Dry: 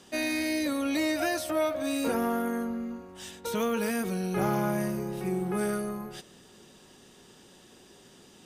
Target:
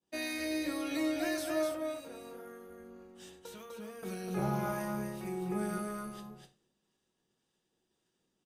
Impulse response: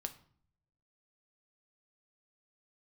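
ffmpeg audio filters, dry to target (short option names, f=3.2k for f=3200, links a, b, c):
-filter_complex "[0:a]agate=range=-33dB:threshold=-41dB:ratio=3:detection=peak,asettb=1/sr,asplit=3[a][b][c];[a]atrim=end=1.744[d];[b]atrim=start=1.74:end=4.03,asetpts=PTS-STARTPTS,afade=t=in:d=0.004:c=qsin,afade=t=out:st=2.286:d=0.004:c=qsin,acompressor=threshold=-39dB:ratio=6[e];[c]atrim=start=4.026[f];[d][e]acrossfade=d=0.004:c1=hsin:c2=qsin[g];[g][f]acrossfade=d=0.004:c1=qsin:c2=hsin,acrossover=split=810[h][i];[h]aeval=exprs='val(0)*(1-0.5/2+0.5/2*cos(2*PI*1.8*n/s))':c=same[j];[i]aeval=exprs='val(0)*(1-0.5/2-0.5/2*cos(2*PI*1.8*n/s))':c=same[k];[j][k]amix=inputs=2:normalize=0,aecho=1:1:249:0.596[l];[1:a]atrim=start_sample=2205,afade=t=out:st=0.16:d=0.01,atrim=end_sample=7497[m];[l][m]afir=irnorm=-1:irlink=0,volume=-3dB"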